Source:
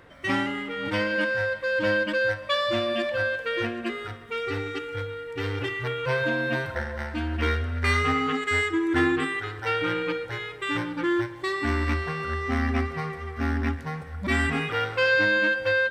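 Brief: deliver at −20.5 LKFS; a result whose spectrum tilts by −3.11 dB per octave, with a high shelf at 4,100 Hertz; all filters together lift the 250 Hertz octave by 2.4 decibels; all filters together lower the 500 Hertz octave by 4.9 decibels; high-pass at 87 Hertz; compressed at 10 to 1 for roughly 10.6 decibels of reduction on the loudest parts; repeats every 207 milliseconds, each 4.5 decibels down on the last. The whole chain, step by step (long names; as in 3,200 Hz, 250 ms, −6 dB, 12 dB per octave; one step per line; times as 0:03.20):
high-pass filter 87 Hz
parametric band 250 Hz +6 dB
parametric band 500 Hz −8 dB
high-shelf EQ 4,100 Hz +6 dB
downward compressor 10 to 1, threshold −29 dBFS
repeating echo 207 ms, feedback 60%, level −4.5 dB
level +10.5 dB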